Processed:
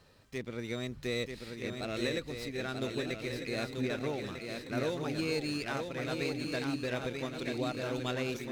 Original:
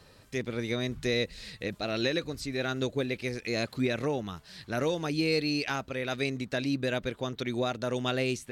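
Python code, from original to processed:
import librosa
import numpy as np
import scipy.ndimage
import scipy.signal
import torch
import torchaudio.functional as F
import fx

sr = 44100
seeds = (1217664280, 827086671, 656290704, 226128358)

y = fx.echo_swing(x, sr, ms=1248, ratio=3, feedback_pct=44, wet_db=-5)
y = fx.running_max(y, sr, window=3)
y = F.gain(torch.from_numpy(y), -6.0).numpy()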